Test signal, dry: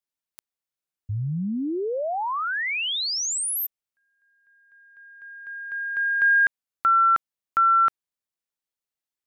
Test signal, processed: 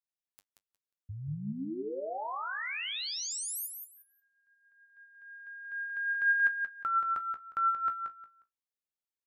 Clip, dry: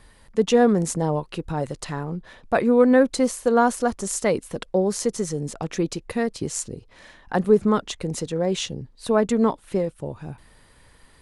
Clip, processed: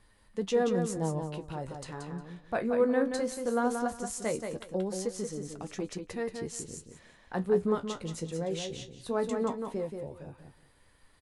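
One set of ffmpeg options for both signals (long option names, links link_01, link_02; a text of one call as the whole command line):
ffmpeg -i in.wav -filter_complex "[0:a]flanger=delay=9.7:depth=8.5:regen=46:speed=0.18:shape=sinusoidal,asplit=2[link_01][link_02];[link_02]aecho=0:1:179|358|537:0.501|0.105|0.0221[link_03];[link_01][link_03]amix=inputs=2:normalize=0,volume=-7dB" out.wav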